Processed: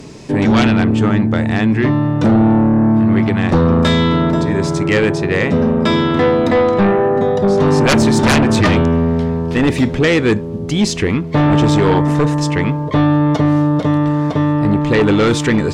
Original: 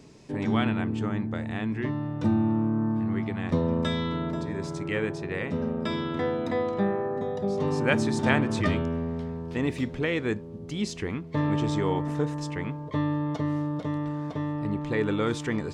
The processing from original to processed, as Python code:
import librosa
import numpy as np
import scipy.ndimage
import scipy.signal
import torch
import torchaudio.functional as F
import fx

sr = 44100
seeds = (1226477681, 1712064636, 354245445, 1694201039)

y = fx.fold_sine(x, sr, drive_db=13, ceiling_db=-7.5)